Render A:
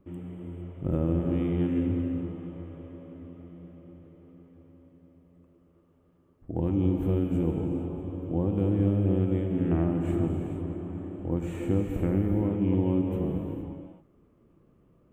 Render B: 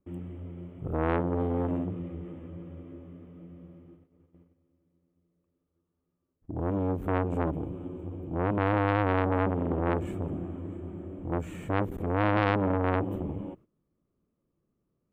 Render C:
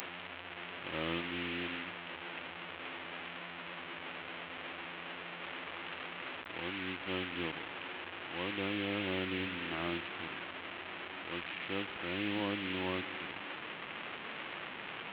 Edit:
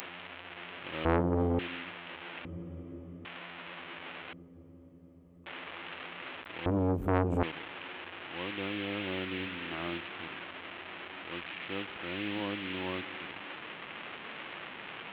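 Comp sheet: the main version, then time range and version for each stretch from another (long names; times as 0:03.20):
C
0:01.05–0:01.59: punch in from B
0:02.45–0:03.25: punch in from B
0:04.33–0:05.46: punch in from A
0:06.66–0:07.43: punch in from B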